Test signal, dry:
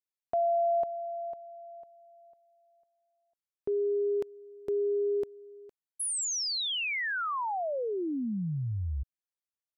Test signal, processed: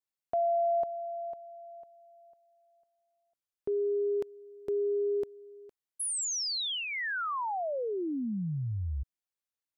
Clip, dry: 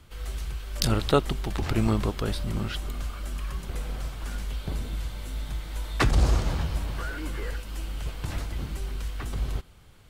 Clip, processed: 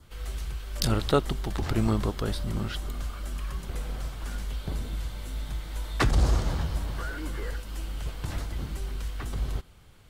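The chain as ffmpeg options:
-af "adynamicequalizer=threshold=0.002:dfrequency=2500:dqfactor=3.5:tfrequency=2500:tqfactor=3.5:attack=5:release=100:ratio=0.375:range=2.5:mode=cutabove:tftype=bell,acontrast=29,volume=-6dB"

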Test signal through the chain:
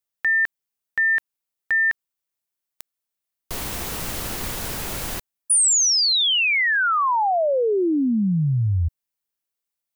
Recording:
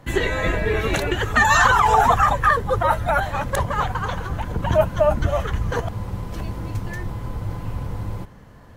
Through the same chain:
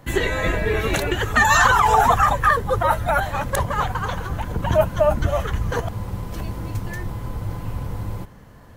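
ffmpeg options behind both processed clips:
-af "highshelf=f=10k:g=8"

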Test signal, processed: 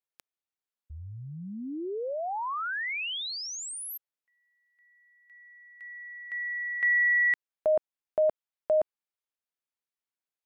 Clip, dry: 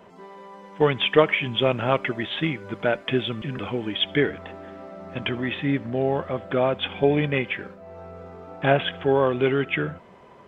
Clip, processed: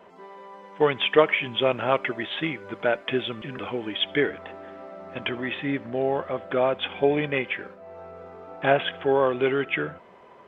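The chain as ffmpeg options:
-af "bass=f=250:g=-9,treble=f=4k:g=-6"

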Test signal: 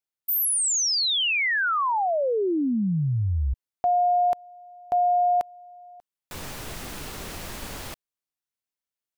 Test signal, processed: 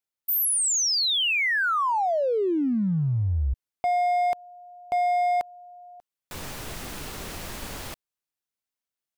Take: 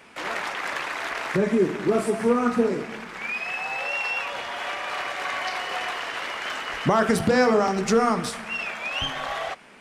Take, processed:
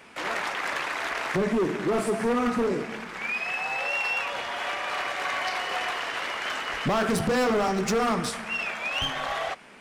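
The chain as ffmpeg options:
-af "asoftclip=type=hard:threshold=-21dB"

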